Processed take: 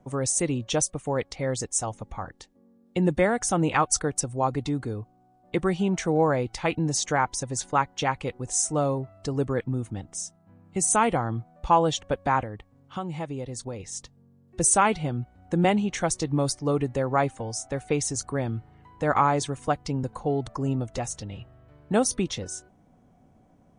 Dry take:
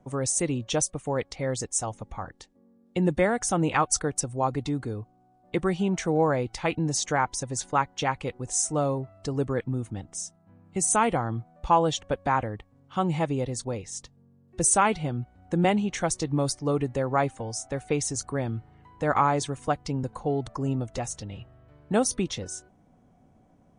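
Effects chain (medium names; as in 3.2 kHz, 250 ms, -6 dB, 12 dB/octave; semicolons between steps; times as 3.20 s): 12.42–13.80 s: compression 2.5:1, threshold -34 dBFS, peak gain reduction 9 dB; trim +1 dB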